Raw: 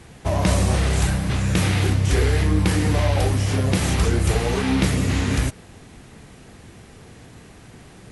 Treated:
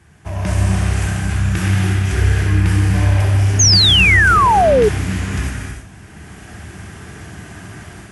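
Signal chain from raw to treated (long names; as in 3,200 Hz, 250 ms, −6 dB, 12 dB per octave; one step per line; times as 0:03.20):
loose part that buzzes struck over −17 dBFS, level −23 dBFS
high-pass filter 73 Hz
low-shelf EQ 190 Hz +7.5 dB
automatic gain control gain up to 14 dB
thirty-one-band graphic EQ 125 Hz −7 dB, 250 Hz −7 dB, 500 Hz −11 dB, 1,600 Hz +7 dB, 4,000 Hz −7 dB
on a send: flutter between parallel walls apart 10.8 metres, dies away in 0.36 s
on the sum: reverb whose tail is shaped and stops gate 350 ms flat, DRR 0 dB
sound drawn into the spectrogram fall, 0:03.59–0:04.89, 400–6,700 Hz −4 dBFS
level −7.5 dB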